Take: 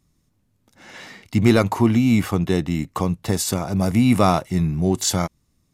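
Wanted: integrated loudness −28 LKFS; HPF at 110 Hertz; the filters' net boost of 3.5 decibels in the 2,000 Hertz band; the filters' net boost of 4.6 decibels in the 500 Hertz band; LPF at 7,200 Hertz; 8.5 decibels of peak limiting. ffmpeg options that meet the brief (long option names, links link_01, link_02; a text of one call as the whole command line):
ffmpeg -i in.wav -af "highpass=110,lowpass=7200,equalizer=frequency=500:width_type=o:gain=6,equalizer=frequency=2000:width_type=o:gain=4,volume=-7dB,alimiter=limit=-16dB:level=0:latency=1" out.wav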